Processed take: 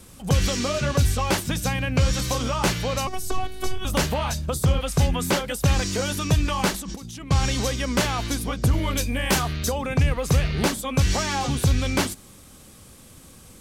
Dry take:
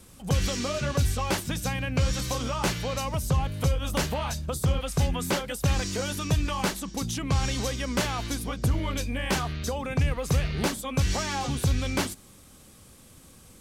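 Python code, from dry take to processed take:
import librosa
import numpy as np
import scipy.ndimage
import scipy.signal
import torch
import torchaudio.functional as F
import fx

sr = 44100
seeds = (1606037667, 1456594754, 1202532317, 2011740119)

y = fx.robotise(x, sr, hz=374.0, at=(3.07, 3.85))
y = fx.over_compress(y, sr, threshold_db=-40.0, ratio=-1.0, at=(6.74, 7.31))
y = fx.high_shelf(y, sr, hz=8000.0, db=9.0, at=(8.73, 9.72))
y = F.gain(torch.from_numpy(y), 4.5).numpy()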